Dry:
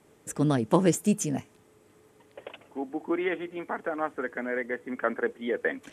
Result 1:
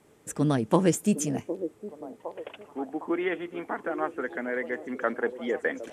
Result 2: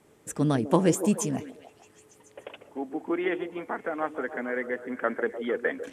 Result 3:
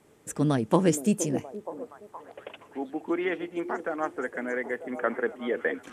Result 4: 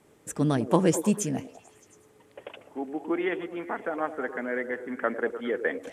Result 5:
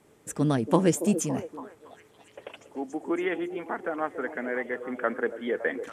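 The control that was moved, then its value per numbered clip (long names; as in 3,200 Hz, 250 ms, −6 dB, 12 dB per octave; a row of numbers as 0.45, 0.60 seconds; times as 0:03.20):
echo through a band-pass that steps, delay time: 760, 150, 470, 102, 281 milliseconds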